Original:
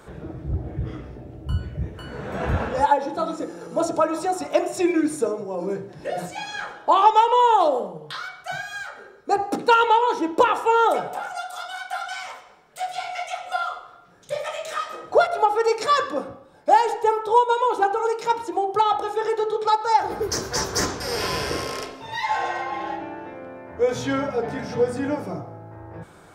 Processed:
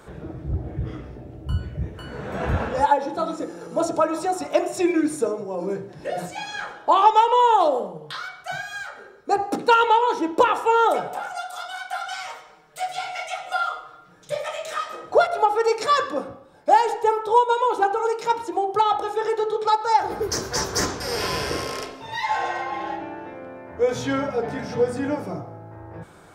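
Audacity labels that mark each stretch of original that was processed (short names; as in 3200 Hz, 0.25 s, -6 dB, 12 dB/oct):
12.060000	14.350000	comb 6.4 ms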